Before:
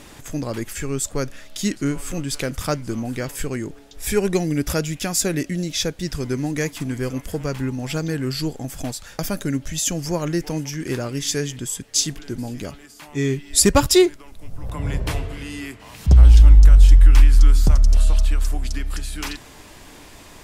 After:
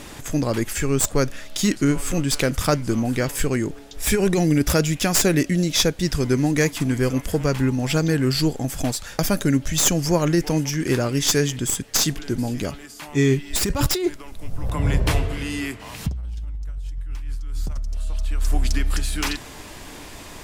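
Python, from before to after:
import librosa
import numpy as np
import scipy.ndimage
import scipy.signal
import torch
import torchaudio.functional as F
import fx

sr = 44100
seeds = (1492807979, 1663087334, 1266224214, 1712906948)

y = fx.tracing_dist(x, sr, depth_ms=0.075)
y = fx.over_compress(y, sr, threshold_db=-20.0, ratio=-1.0)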